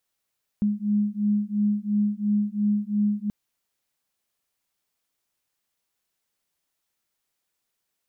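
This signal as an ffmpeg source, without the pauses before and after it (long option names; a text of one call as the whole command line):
ffmpeg -f lavfi -i "aevalsrc='0.0631*(sin(2*PI*206*t)+sin(2*PI*208.9*t))':duration=2.68:sample_rate=44100" out.wav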